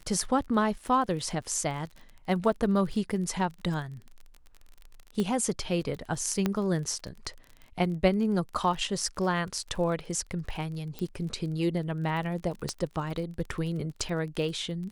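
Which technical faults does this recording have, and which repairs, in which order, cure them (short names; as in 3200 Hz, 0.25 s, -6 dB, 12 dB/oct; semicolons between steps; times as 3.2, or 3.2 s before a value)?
crackle 32/s -37 dBFS
5.2 pop -18 dBFS
6.46 pop -13 dBFS
10.99 pop -21 dBFS
12.69 pop -18 dBFS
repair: de-click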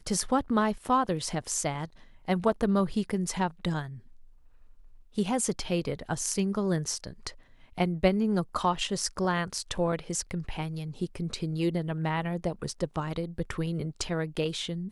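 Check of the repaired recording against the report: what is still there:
none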